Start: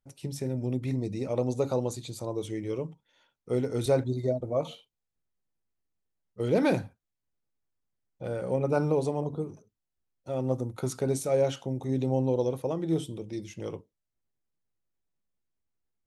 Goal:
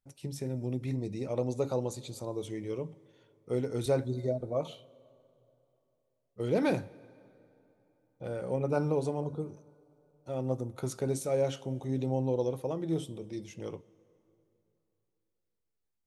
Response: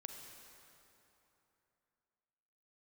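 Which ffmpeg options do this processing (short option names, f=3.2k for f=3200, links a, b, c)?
-filter_complex "[0:a]asplit=2[a][b];[1:a]atrim=start_sample=2205,adelay=14[c];[b][c]afir=irnorm=-1:irlink=0,volume=-13.5dB[d];[a][d]amix=inputs=2:normalize=0,volume=-3.5dB"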